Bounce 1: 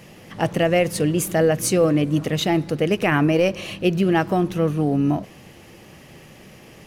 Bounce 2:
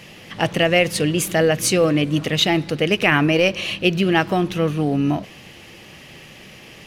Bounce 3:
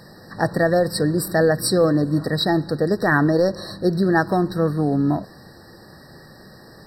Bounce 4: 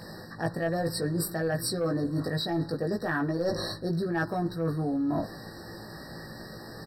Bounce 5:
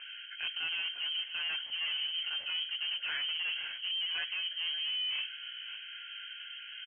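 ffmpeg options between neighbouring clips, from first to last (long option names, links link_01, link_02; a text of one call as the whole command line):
ffmpeg -i in.wav -af "equalizer=frequency=3100:width=0.69:gain=9" out.wav
ffmpeg -i in.wav -af "afftfilt=real='re*eq(mod(floor(b*sr/1024/1900),2),0)':imag='im*eq(mod(floor(b*sr/1024/1900),2),0)':win_size=1024:overlap=0.75" out.wav
ffmpeg -i in.wav -filter_complex "[0:a]asplit=2[link_01][link_02];[link_02]adelay=18,volume=-2.5dB[link_03];[link_01][link_03]amix=inputs=2:normalize=0,asoftclip=type=tanh:threshold=-5.5dB,areverse,acompressor=threshold=-26dB:ratio=10,areverse" out.wav
ffmpeg -i in.wav -af "aresample=16000,asoftclip=type=tanh:threshold=-30dB,aresample=44100,aecho=1:1:557:0.211,lowpass=frequency=2800:width_type=q:width=0.5098,lowpass=frequency=2800:width_type=q:width=0.6013,lowpass=frequency=2800:width_type=q:width=0.9,lowpass=frequency=2800:width_type=q:width=2.563,afreqshift=-3300,volume=-2dB" out.wav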